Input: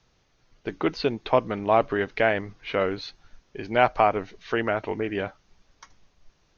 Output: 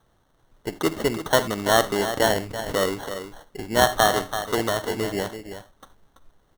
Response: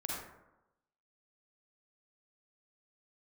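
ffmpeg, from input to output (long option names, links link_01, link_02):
-filter_complex "[0:a]aecho=1:1:334:0.316,asplit=2[link_01][link_02];[1:a]atrim=start_sample=2205,afade=type=out:start_time=0.14:duration=0.01,atrim=end_sample=6615,highshelf=frequency=5100:gain=8.5[link_03];[link_02][link_03]afir=irnorm=-1:irlink=0,volume=-13dB[link_04];[link_01][link_04]amix=inputs=2:normalize=0,acrusher=samples=18:mix=1:aa=0.000001"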